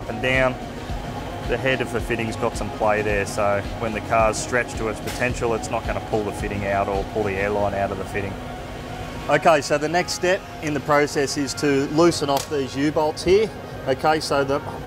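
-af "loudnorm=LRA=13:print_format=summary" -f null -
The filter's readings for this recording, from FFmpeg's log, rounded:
Input Integrated:    -22.0 LUFS
Input True Peak:      -4.7 dBTP
Input LRA:             3.0 LU
Input Threshold:     -32.1 LUFS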